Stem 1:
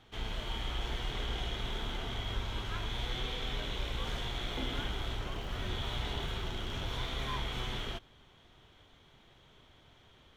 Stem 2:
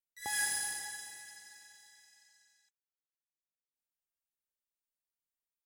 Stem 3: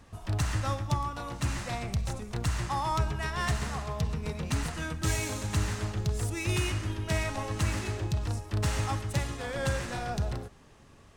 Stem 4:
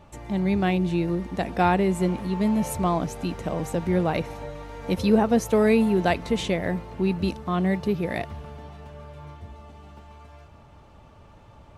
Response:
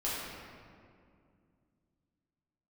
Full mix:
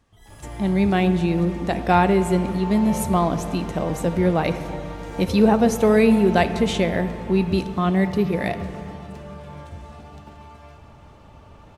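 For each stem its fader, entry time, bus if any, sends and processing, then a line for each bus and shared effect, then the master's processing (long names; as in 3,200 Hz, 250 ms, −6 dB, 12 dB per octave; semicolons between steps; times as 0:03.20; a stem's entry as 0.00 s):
−15.5 dB, 0.00 s, no send, spectral peaks only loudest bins 32
−11.5 dB, 0.00 s, no send, downward compressor, threshold −41 dBFS, peak gain reduction 11.5 dB
−9.5 dB, 0.00 s, no send, downward compressor 2 to 1, threshold −47 dBFS, peak gain reduction 13.5 dB
+2.5 dB, 0.30 s, send −15 dB, no processing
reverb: on, RT60 2.3 s, pre-delay 6 ms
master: no processing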